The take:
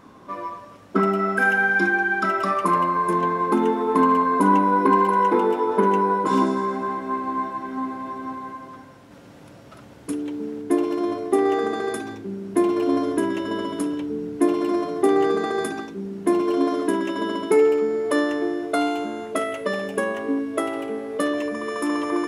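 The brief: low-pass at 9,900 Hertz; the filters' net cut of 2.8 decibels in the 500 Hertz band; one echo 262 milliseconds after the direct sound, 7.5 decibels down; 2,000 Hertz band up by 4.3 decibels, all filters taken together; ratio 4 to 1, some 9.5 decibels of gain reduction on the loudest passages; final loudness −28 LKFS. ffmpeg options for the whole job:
ffmpeg -i in.wav -af "lowpass=9900,equalizer=frequency=500:width_type=o:gain=-4,equalizer=frequency=2000:width_type=o:gain=6.5,acompressor=threshold=-25dB:ratio=4,aecho=1:1:262:0.422" out.wav

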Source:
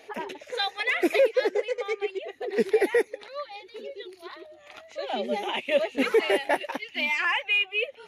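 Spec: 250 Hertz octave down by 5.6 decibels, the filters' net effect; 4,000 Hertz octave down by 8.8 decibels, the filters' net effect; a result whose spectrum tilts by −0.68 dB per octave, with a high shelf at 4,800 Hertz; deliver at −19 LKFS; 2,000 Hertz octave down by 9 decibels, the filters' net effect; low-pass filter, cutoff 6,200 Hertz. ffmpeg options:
ffmpeg -i in.wav -af "lowpass=6200,equalizer=frequency=250:width_type=o:gain=-8,equalizer=frequency=2000:width_type=o:gain=-8,equalizer=frequency=4000:width_type=o:gain=-5.5,highshelf=frequency=4800:gain=-6,volume=11.5dB" out.wav

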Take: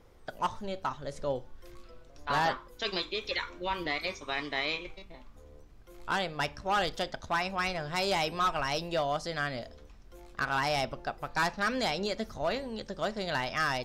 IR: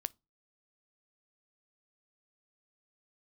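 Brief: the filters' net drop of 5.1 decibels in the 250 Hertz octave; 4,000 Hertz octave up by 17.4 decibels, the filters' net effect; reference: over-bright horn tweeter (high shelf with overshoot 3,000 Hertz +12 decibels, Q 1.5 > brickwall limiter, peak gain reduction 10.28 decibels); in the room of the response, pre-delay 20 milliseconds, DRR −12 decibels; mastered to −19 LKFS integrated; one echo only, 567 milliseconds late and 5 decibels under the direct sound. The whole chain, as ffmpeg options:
-filter_complex "[0:a]equalizer=frequency=250:width_type=o:gain=-7.5,equalizer=frequency=4000:width_type=o:gain=6.5,aecho=1:1:567:0.562,asplit=2[link_01][link_02];[1:a]atrim=start_sample=2205,adelay=20[link_03];[link_02][link_03]afir=irnorm=-1:irlink=0,volume=13dB[link_04];[link_01][link_04]amix=inputs=2:normalize=0,highshelf=frequency=3000:width_type=q:width=1.5:gain=12,volume=-6dB,alimiter=limit=-8dB:level=0:latency=1"

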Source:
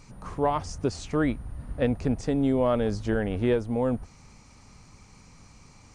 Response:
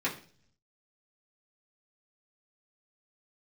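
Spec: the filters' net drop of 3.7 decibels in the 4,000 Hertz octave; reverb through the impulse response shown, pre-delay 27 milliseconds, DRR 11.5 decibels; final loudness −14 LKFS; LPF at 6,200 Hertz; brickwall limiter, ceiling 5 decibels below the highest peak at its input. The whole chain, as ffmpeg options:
-filter_complex "[0:a]lowpass=6200,equalizer=frequency=4000:width_type=o:gain=-4,alimiter=limit=-19dB:level=0:latency=1,asplit=2[link_01][link_02];[1:a]atrim=start_sample=2205,adelay=27[link_03];[link_02][link_03]afir=irnorm=-1:irlink=0,volume=-19.5dB[link_04];[link_01][link_04]amix=inputs=2:normalize=0,volume=15.5dB"

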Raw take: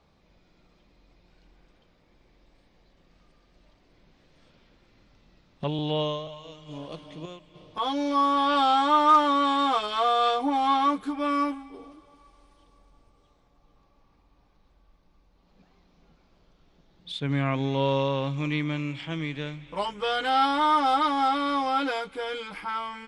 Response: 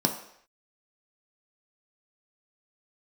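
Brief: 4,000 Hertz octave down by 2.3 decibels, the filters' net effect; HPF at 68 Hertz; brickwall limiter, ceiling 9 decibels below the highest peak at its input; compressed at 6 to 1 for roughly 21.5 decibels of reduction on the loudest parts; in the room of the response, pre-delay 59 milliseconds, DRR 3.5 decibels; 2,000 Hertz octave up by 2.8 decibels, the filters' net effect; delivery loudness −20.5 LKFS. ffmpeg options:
-filter_complex "[0:a]highpass=68,equalizer=frequency=2000:width_type=o:gain=5,equalizer=frequency=4000:width_type=o:gain=-5,acompressor=threshold=-37dB:ratio=6,alimiter=level_in=10dB:limit=-24dB:level=0:latency=1,volume=-10dB,asplit=2[link_01][link_02];[1:a]atrim=start_sample=2205,adelay=59[link_03];[link_02][link_03]afir=irnorm=-1:irlink=0,volume=-13.5dB[link_04];[link_01][link_04]amix=inputs=2:normalize=0,volume=18.5dB"

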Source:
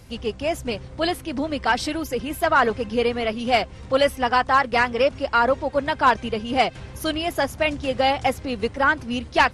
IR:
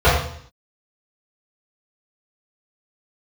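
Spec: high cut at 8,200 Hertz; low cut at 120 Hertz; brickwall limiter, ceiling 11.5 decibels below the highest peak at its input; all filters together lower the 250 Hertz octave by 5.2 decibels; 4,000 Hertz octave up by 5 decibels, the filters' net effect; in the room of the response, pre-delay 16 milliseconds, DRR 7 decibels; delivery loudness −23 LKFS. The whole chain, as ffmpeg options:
-filter_complex "[0:a]highpass=120,lowpass=8200,equalizer=frequency=250:width_type=o:gain=-6,equalizer=frequency=4000:width_type=o:gain=7.5,alimiter=limit=-13.5dB:level=0:latency=1,asplit=2[link_01][link_02];[1:a]atrim=start_sample=2205,adelay=16[link_03];[link_02][link_03]afir=irnorm=-1:irlink=0,volume=-33dB[link_04];[link_01][link_04]amix=inputs=2:normalize=0,volume=1.5dB"

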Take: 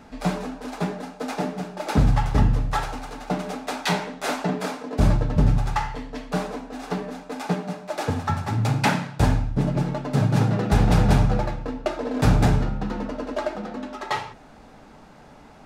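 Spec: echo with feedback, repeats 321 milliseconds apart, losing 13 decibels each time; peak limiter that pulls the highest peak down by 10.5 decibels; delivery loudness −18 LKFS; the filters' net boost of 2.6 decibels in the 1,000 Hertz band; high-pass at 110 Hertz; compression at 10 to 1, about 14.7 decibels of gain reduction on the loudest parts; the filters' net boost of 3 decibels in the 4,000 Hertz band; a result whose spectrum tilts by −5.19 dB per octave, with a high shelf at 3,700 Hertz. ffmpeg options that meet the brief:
ffmpeg -i in.wav -af "highpass=110,equalizer=frequency=1000:width_type=o:gain=3.5,highshelf=frequency=3700:gain=-5.5,equalizer=frequency=4000:width_type=o:gain=7,acompressor=threshold=-31dB:ratio=10,alimiter=level_in=4dB:limit=-24dB:level=0:latency=1,volume=-4dB,aecho=1:1:321|642|963:0.224|0.0493|0.0108,volume=20dB" out.wav

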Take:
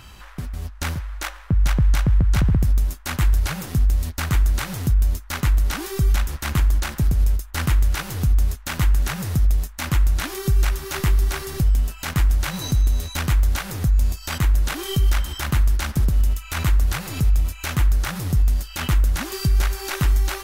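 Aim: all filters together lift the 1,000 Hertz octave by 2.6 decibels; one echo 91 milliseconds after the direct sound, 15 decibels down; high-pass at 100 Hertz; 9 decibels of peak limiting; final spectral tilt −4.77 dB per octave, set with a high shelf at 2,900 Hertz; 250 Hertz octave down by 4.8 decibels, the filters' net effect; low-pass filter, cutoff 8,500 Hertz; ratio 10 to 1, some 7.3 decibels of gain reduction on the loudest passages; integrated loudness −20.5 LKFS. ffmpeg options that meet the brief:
ffmpeg -i in.wav -af "highpass=100,lowpass=8500,equalizer=frequency=250:width_type=o:gain=-8,equalizer=frequency=1000:width_type=o:gain=5,highshelf=frequency=2900:gain=-8,acompressor=threshold=-27dB:ratio=10,alimiter=level_in=1.5dB:limit=-24dB:level=0:latency=1,volume=-1.5dB,aecho=1:1:91:0.178,volume=16dB" out.wav

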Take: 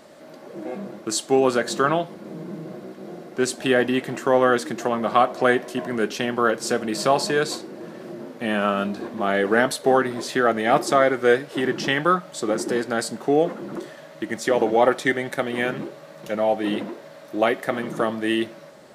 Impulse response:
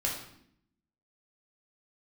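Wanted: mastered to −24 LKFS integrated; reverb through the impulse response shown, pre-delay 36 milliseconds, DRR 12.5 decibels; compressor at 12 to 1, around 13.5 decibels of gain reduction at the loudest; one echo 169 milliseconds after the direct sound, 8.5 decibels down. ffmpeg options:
-filter_complex "[0:a]acompressor=threshold=-26dB:ratio=12,aecho=1:1:169:0.376,asplit=2[link_01][link_02];[1:a]atrim=start_sample=2205,adelay=36[link_03];[link_02][link_03]afir=irnorm=-1:irlink=0,volume=-18.5dB[link_04];[link_01][link_04]amix=inputs=2:normalize=0,volume=7.5dB"

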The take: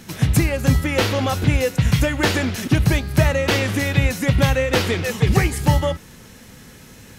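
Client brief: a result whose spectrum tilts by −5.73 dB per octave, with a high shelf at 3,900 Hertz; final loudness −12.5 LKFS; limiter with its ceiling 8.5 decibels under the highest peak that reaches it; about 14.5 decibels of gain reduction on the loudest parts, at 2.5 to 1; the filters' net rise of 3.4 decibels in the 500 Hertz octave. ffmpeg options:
ffmpeg -i in.wav -af "equalizer=frequency=500:width_type=o:gain=4,highshelf=frequency=3900:gain=-8,acompressor=threshold=-34dB:ratio=2.5,volume=22dB,alimiter=limit=-2.5dB:level=0:latency=1" out.wav

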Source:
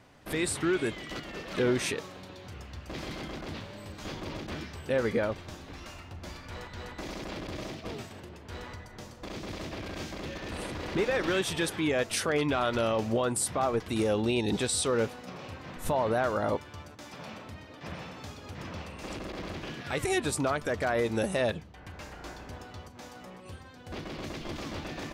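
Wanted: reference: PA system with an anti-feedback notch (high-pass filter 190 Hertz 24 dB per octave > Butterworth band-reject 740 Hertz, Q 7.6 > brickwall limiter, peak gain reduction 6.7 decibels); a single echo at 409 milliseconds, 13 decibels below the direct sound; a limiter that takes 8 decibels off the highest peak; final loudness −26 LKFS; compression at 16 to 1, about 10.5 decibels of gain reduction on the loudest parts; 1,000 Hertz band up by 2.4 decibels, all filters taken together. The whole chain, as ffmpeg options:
ffmpeg -i in.wav -af "equalizer=frequency=1000:width_type=o:gain=5,acompressor=threshold=-32dB:ratio=16,alimiter=level_in=6.5dB:limit=-24dB:level=0:latency=1,volume=-6.5dB,highpass=frequency=190:width=0.5412,highpass=frequency=190:width=1.3066,asuperstop=centerf=740:order=8:qfactor=7.6,aecho=1:1:409:0.224,volume=17.5dB,alimiter=limit=-16.5dB:level=0:latency=1" out.wav

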